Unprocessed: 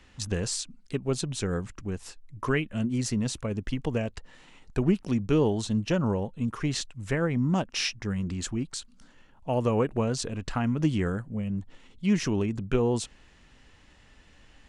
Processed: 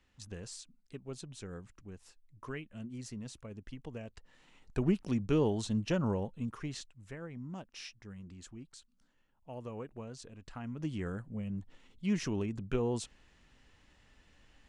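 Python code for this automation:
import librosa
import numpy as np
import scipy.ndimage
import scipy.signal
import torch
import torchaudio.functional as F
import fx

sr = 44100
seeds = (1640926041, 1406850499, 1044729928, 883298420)

y = fx.gain(x, sr, db=fx.line((3.97, -15.5), (4.82, -5.5), (6.25, -5.5), (7.14, -18.0), (10.39, -18.0), (11.26, -7.5)))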